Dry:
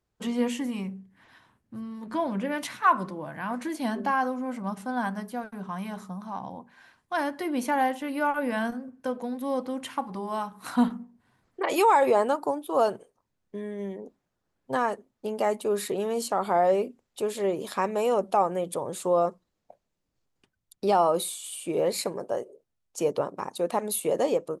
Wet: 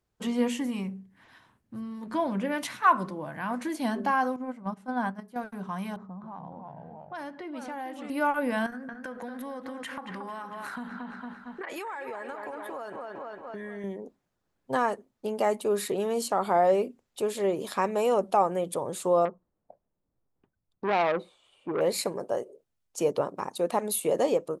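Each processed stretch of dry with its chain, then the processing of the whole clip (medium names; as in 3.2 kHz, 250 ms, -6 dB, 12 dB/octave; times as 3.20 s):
4.36–5.36 s: gate -32 dBFS, range -10 dB + treble shelf 3.2 kHz -8 dB
5.96–8.10 s: level-controlled noise filter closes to 610 Hz, open at -22.5 dBFS + ever faster or slower copies 273 ms, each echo -2 st, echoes 2, each echo -6 dB + compression 2.5:1, threshold -40 dBFS
8.66–13.84 s: peaking EQ 1.7 kHz +14 dB 0.79 oct + feedback echo behind a low-pass 227 ms, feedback 50%, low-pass 3.8 kHz, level -9.5 dB + compression 10:1, threshold -34 dBFS
19.25–21.81 s: low-pass 1.1 kHz + transformer saturation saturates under 1.4 kHz
whole clip: none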